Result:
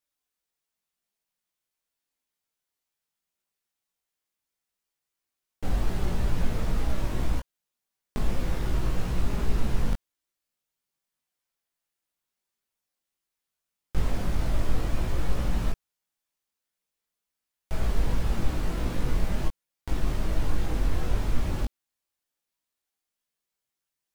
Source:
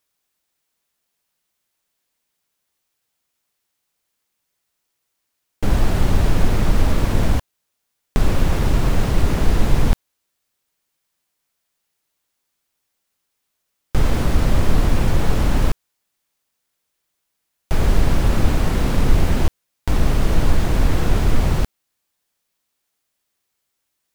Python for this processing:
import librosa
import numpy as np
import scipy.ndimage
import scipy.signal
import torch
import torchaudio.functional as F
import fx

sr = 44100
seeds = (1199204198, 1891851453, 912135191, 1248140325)

y = fx.chorus_voices(x, sr, voices=4, hz=0.11, base_ms=19, depth_ms=3.4, mix_pct=45)
y = y * librosa.db_to_amplitude(-8.0)